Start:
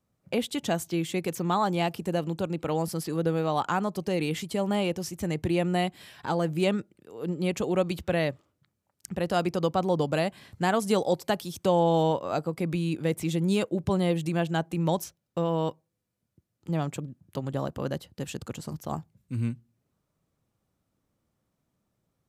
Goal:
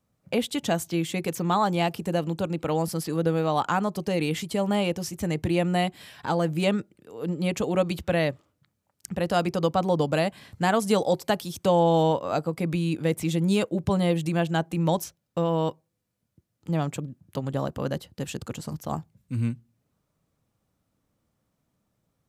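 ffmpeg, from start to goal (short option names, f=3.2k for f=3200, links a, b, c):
-af "bandreject=f=370:w=12,volume=2.5dB"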